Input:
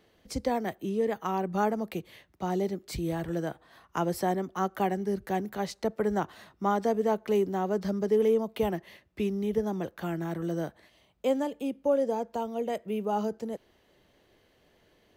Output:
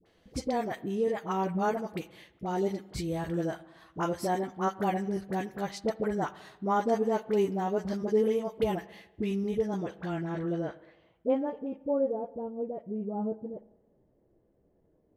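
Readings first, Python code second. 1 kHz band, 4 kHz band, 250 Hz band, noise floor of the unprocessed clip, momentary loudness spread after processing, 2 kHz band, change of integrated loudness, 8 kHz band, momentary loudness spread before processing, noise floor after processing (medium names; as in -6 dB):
-1.0 dB, -2.0 dB, -1.0 dB, -66 dBFS, 9 LU, -1.0 dB, -1.0 dB, -2.0 dB, 10 LU, -69 dBFS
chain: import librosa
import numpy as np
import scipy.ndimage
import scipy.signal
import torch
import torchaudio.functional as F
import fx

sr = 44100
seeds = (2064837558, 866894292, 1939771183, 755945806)

y = fx.chorus_voices(x, sr, voices=4, hz=0.15, base_ms=11, depth_ms=5.0, mix_pct=25)
y = fx.dispersion(y, sr, late='highs', ms=59.0, hz=720.0)
y = fx.filter_sweep_lowpass(y, sr, from_hz=11000.0, to_hz=490.0, start_s=9.45, end_s=12.46, q=0.71)
y = fx.rev_spring(y, sr, rt60_s=1.1, pass_ms=(46, 56), chirp_ms=25, drr_db=17.5)
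y = F.gain(torch.from_numpy(y), 1.0).numpy()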